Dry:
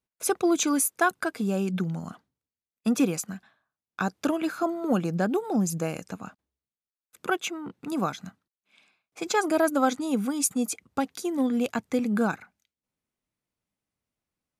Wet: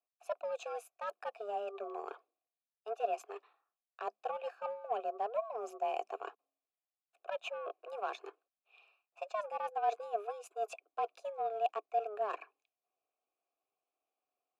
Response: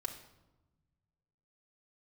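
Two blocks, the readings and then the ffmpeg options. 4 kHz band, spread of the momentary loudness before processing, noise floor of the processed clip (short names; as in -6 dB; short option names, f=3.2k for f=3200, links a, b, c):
-16.0 dB, 14 LU, under -85 dBFS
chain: -filter_complex "[0:a]areverse,acompressor=threshold=-39dB:ratio=6,areverse,afreqshift=210,aeval=exprs='0.0501*(cos(1*acos(clip(val(0)/0.0501,-1,1)))-cos(1*PI/2))+0.00355*(cos(7*acos(clip(val(0)/0.0501,-1,1)))-cos(7*PI/2))':c=same,asplit=3[a][b][c];[a]bandpass=f=730:t=q:w=8,volume=0dB[d];[b]bandpass=f=1.09k:t=q:w=8,volume=-6dB[e];[c]bandpass=f=2.44k:t=q:w=8,volume=-9dB[f];[d][e][f]amix=inputs=3:normalize=0,volume=14.5dB"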